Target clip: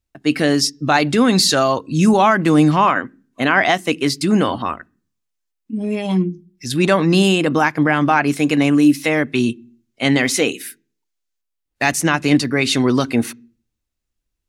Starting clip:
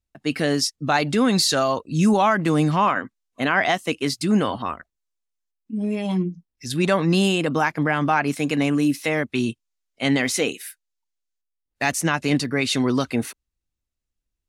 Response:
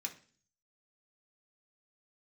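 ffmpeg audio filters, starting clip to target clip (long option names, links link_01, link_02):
-filter_complex "[0:a]asplit=2[link_01][link_02];[link_02]lowshelf=frequency=460:width_type=q:width=3:gain=8[link_03];[1:a]atrim=start_sample=2205,lowpass=5200[link_04];[link_03][link_04]afir=irnorm=-1:irlink=0,volume=-18dB[link_05];[link_01][link_05]amix=inputs=2:normalize=0,volume=4.5dB"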